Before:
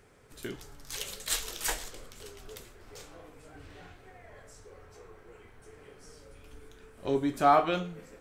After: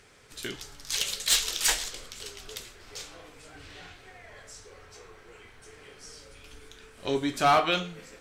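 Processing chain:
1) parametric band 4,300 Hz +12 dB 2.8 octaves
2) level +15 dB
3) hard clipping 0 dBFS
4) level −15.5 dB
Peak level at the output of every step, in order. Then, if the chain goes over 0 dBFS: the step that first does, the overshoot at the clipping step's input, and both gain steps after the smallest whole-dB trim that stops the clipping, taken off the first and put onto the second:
−5.5, +9.5, 0.0, −15.5 dBFS
step 2, 9.5 dB
step 2 +5 dB, step 4 −5.5 dB

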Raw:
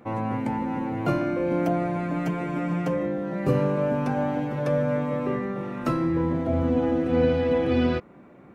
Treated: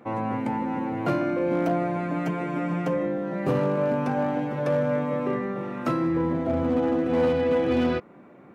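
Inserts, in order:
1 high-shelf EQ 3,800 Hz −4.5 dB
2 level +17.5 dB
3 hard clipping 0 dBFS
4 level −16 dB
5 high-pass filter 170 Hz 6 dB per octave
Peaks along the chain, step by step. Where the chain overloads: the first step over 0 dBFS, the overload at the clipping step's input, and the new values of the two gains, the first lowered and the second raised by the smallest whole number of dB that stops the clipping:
−10.0, +7.5, 0.0, −16.0, −13.0 dBFS
step 2, 7.5 dB
step 2 +9.5 dB, step 4 −8 dB

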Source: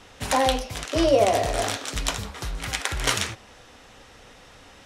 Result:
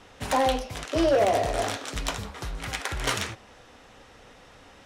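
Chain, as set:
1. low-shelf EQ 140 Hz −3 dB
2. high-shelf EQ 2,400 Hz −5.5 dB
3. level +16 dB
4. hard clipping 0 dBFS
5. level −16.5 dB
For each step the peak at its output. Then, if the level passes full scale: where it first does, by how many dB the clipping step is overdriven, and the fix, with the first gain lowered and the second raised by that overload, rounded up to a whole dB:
−5.0, −7.5, +8.5, 0.0, −16.5 dBFS
step 3, 8.5 dB
step 3 +7 dB, step 5 −7.5 dB

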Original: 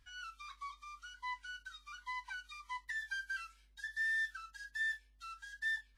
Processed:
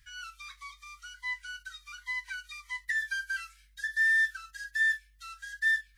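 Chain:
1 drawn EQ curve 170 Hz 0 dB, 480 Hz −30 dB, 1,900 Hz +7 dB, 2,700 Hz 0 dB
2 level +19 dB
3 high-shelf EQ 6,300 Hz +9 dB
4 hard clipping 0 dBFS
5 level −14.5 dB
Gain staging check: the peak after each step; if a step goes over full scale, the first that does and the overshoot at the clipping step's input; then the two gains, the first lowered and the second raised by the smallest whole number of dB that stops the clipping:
−24.5, −5.5, −4.5, −4.5, −19.0 dBFS
no step passes full scale

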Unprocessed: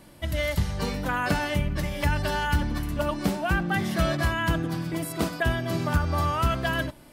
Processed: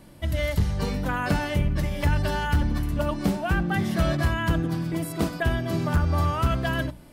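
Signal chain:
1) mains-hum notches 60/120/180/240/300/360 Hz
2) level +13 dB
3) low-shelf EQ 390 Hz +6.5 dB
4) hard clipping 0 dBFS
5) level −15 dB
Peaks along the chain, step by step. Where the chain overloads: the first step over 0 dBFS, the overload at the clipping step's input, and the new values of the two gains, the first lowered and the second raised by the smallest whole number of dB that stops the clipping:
−13.5, −0.5, +5.5, 0.0, −15.0 dBFS
step 3, 5.5 dB
step 2 +7 dB, step 5 −9 dB

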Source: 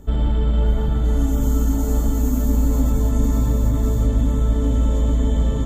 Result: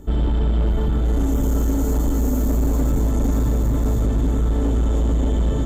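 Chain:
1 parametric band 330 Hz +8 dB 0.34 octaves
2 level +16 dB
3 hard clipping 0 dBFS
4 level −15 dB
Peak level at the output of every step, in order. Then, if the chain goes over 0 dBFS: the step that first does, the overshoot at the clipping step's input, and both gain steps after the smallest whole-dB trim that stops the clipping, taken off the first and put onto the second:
−6.5, +9.5, 0.0, −15.0 dBFS
step 2, 9.5 dB
step 2 +6 dB, step 4 −5 dB

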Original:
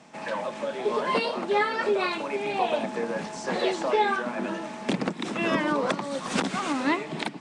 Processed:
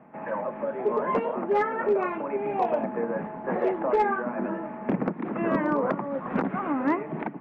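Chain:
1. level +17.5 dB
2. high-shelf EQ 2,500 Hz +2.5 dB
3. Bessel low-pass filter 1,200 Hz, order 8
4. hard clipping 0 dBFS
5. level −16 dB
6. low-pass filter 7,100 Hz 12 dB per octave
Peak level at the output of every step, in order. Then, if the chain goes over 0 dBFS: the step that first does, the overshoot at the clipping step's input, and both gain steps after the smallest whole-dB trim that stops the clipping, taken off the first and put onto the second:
+4.5, +5.5, +3.5, 0.0, −16.0, −16.0 dBFS
step 1, 3.5 dB
step 1 +13.5 dB, step 5 −12 dB

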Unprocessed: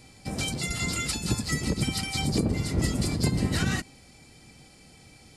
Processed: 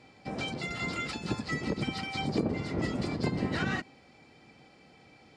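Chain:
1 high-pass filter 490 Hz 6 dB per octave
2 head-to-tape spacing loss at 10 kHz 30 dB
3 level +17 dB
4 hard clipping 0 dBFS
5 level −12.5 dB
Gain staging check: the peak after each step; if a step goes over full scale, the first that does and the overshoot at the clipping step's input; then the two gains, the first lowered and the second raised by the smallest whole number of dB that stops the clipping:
−17.0, −21.0, −4.0, −4.0, −16.5 dBFS
no step passes full scale

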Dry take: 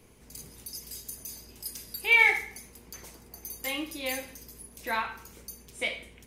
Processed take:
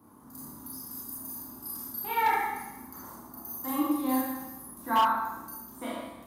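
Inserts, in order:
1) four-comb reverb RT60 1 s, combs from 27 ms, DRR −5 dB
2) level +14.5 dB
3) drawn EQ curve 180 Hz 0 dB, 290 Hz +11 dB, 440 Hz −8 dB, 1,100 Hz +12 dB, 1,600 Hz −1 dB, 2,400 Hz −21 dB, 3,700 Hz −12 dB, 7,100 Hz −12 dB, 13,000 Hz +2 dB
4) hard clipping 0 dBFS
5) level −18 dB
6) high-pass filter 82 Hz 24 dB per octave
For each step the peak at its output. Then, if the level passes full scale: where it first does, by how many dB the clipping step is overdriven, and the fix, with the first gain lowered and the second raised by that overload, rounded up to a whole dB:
−4.0, +10.5, +8.0, 0.0, −18.0, −15.5 dBFS
step 2, 8.0 dB
step 2 +6.5 dB, step 5 −10 dB

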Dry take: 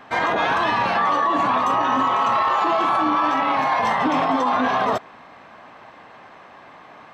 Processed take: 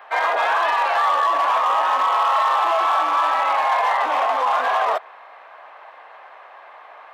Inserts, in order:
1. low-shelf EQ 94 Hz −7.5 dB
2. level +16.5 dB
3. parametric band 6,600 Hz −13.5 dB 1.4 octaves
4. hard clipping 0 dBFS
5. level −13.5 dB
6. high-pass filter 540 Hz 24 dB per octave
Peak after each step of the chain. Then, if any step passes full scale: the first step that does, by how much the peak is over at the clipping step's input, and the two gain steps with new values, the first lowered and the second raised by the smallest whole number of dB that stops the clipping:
−9.5, +7.0, +6.0, 0.0, −13.5, −8.5 dBFS
step 2, 6.0 dB
step 2 +10.5 dB, step 5 −7.5 dB

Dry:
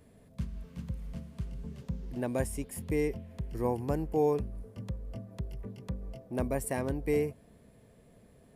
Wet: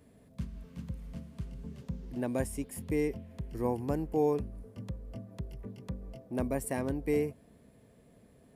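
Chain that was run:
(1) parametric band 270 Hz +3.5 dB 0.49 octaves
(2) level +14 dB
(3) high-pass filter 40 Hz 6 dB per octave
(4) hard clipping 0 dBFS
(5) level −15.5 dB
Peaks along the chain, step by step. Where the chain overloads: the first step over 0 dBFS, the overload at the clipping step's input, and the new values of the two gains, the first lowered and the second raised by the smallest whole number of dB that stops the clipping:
−16.0, −2.0, −2.0, −2.0, −17.5 dBFS
no step passes full scale

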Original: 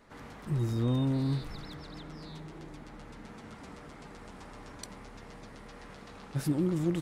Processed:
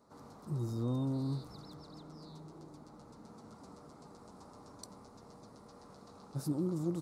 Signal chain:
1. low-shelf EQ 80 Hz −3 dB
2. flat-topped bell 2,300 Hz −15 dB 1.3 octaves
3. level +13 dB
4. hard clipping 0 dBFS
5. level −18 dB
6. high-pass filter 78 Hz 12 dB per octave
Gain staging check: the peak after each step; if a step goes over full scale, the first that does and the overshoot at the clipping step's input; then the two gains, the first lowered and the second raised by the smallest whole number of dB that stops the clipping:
−18.0, −18.0, −5.0, −5.0, −23.0, −23.5 dBFS
no step passes full scale

